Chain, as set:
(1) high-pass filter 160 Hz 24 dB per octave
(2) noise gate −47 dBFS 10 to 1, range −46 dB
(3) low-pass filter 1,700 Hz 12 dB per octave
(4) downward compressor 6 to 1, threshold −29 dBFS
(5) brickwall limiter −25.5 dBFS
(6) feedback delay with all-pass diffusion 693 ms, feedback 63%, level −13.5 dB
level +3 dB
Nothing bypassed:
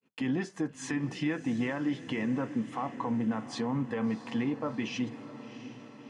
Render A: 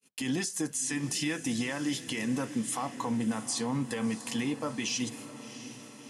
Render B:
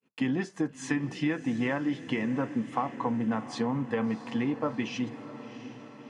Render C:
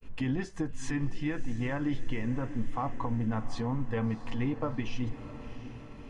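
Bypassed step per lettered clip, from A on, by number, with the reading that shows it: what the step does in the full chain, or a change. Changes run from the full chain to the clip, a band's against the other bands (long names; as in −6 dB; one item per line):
3, 8 kHz band +16.5 dB
5, change in crest factor +4.5 dB
1, 125 Hz band +7.0 dB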